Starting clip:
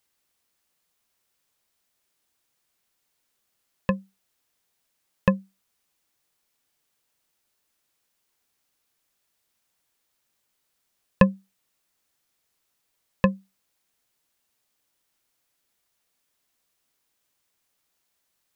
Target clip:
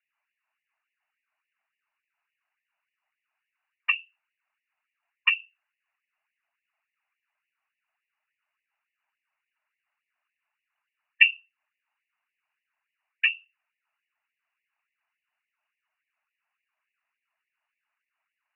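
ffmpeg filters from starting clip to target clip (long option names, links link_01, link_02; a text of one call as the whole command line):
ffmpeg -i in.wav -filter_complex "[0:a]lowpass=frequency=2500:width_type=q:width=0.5098,lowpass=frequency=2500:width_type=q:width=0.6013,lowpass=frequency=2500:width_type=q:width=0.9,lowpass=frequency=2500:width_type=q:width=2.563,afreqshift=-2900,afftfilt=real='hypot(re,im)*cos(2*PI*random(0))':imag='hypot(re,im)*sin(2*PI*random(1))':win_size=512:overlap=0.75,asplit=2[link_01][link_02];[link_02]acompressor=threshold=-35dB:ratio=8,volume=-3dB[link_03];[link_01][link_03]amix=inputs=2:normalize=0,afftfilt=real='re*gte(b*sr/1024,560*pow(1800/560,0.5+0.5*sin(2*PI*3.5*pts/sr)))':imag='im*gte(b*sr/1024,560*pow(1800/560,0.5+0.5*sin(2*PI*3.5*pts/sr)))':win_size=1024:overlap=0.75,volume=3dB" out.wav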